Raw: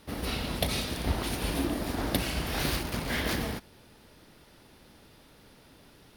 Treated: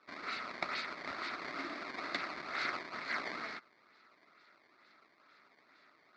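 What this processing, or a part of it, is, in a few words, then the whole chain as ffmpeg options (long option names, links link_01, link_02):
circuit-bent sampling toy: -af "acrusher=samples=19:mix=1:aa=0.000001:lfo=1:lforange=30.4:lforate=2.2,highpass=490,equalizer=frequency=490:width_type=q:width=4:gain=-9,equalizer=frequency=840:width_type=q:width=4:gain=-7,equalizer=frequency=1300:width_type=q:width=4:gain=9,equalizer=frequency=2100:width_type=q:width=4:gain=9,equalizer=frequency=3000:width_type=q:width=4:gain=-10,equalizer=frequency=4400:width_type=q:width=4:gain=7,lowpass=frequency=4600:width=0.5412,lowpass=frequency=4600:width=1.3066,volume=-6dB"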